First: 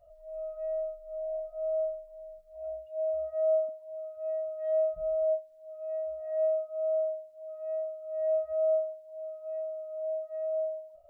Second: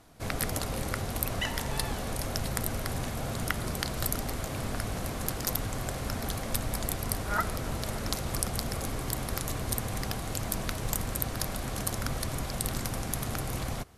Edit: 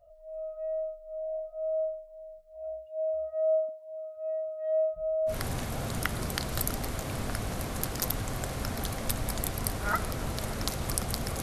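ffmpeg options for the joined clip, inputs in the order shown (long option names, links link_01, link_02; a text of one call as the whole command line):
ffmpeg -i cue0.wav -i cue1.wav -filter_complex "[0:a]apad=whole_dur=11.42,atrim=end=11.42,atrim=end=5.36,asetpts=PTS-STARTPTS[link_01];[1:a]atrim=start=2.71:end=8.87,asetpts=PTS-STARTPTS[link_02];[link_01][link_02]acrossfade=duration=0.1:curve1=tri:curve2=tri" out.wav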